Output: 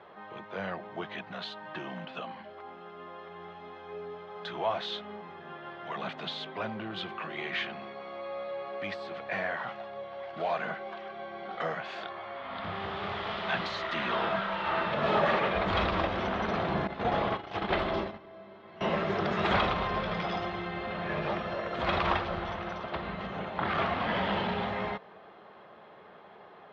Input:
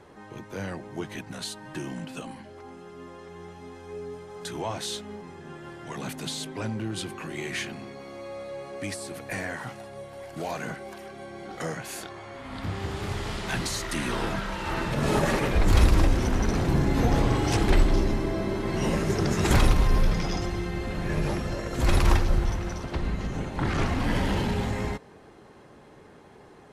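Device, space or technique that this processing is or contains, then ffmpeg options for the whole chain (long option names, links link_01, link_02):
overdrive pedal into a guitar cabinet: -filter_complex "[0:a]asettb=1/sr,asplit=3[link_01][link_02][link_03];[link_01]atrim=end=16.874[link_04];[link_02]atrim=start=16.87:end=18.81,asetpts=PTS-STARTPTS,afade=type=in:duration=0.004:curve=qsin,afade=type=out:start_time=1.936:duration=0.004:curve=qsin,agate=range=-19dB:threshold=-21dB:ratio=16:detection=peak[link_05];[link_03]atrim=start=18.806[link_06];[link_04][link_05]acrossfade=duration=0.004:curve1=hsin:curve2=qsin[link_07];[link_07][link_06]acrossfade=duration=0.004:curve1=qsin:curve2=hsin,asplit=2[link_08][link_09];[link_09]highpass=frequency=720:poles=1,volume=13dB,asoftclip=type=tanh:threshold=-7.5dB[link_10];[link_08][link_10]amix=inputs=2:normalize=0,lowpass=frequency=2600:poles=1,volume=-6dB,highpass=81,equalizer=frequency=130:width_type=q:width=4:gain=-5,equalizer=frequency=190:width_type=q:width=4:gain=6,equalizer=frequency=280:width_type=q:width=4:gain=-8,equalizer=frequency=660:width_type=q:width=4:gain=7,equalizer=frequency=1200:width_type=q:width=4:gain=5,equalizer=frequency=3400:width_type=q:width=4:gain=5,lowpass=frequency=4000:width=0.5412,lowpass=frequency=4000:width=1.3066,volume=-6.5dB"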